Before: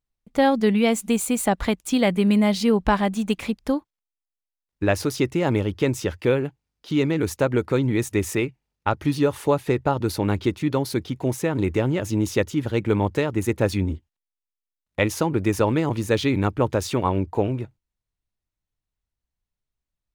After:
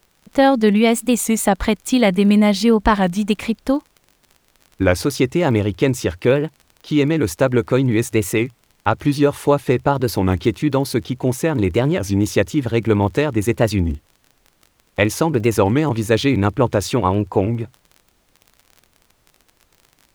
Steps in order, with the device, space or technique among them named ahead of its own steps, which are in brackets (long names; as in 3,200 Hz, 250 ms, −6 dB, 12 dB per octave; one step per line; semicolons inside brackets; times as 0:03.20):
warped LP (wow of a warped record 33 1/3 rpm, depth 160 cents; surface crackle 31 per second −37 dBFS; pink noise bed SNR 43 dB)
level +5 dB